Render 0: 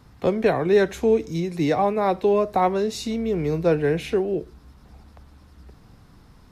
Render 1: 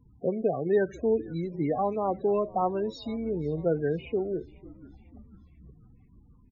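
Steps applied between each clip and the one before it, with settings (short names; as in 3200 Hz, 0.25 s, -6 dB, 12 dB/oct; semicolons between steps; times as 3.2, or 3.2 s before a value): loudest bins only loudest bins 16; frequency-shifting echo 0.493 s, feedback 59%, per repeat -81 Hz, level -21.5 dB; gain -6.5 dB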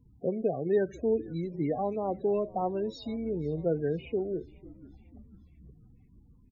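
bell 1200 Hz -10 dB 0.8 oct; gain -1.5 dB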